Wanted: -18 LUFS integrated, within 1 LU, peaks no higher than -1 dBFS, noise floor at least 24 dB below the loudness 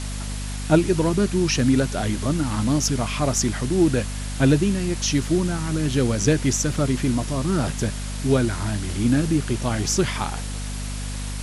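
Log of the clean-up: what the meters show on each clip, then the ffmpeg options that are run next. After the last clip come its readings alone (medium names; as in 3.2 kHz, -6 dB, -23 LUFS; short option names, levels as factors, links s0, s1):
hum 50 Hz; highest harmonic 250 Hz; hum level -27 dBFS; noise floor -29 dBFS; noise floor target -47 dBFS; loudness -22.5 LUFS; peak level -4.0 dBFS; loudness target -18.0 LUFS
-> -af "bandreject=f=50:t=h:w=4,bandreject=f=100:t=h:w=4,bandreject=f=150:t=h:w=4,bandreject=f=200:t=h:w=4,bandreject=f=250:t=h:w=4"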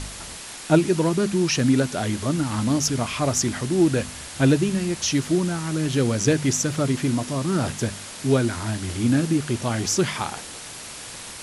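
hum not found; noise floor -38 dBFS; noise floor target -47 dBFS
-> -af "afftdn=nr=9:nf=-38"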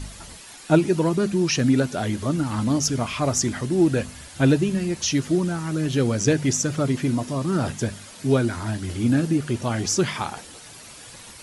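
noise floor -43 dBFS; noise floor target -47 dBFS
-> -af "afftdn=nr=6:nf=-43"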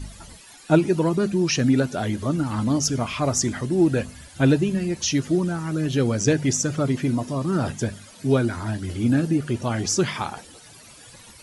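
noise floor -47 dBFS; loudness -23.0 LUFS; peak level -3.0 dBFS; loudness target -18.0 LUFS
-> -af "volume=1.78,alimiter=limit=0.891:level=0:latency=1"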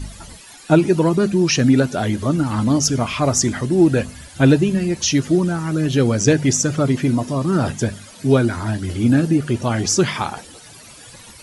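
loudness -18.0 LUFS; peak level -1.0 dBFS; noise floor -42 dBFS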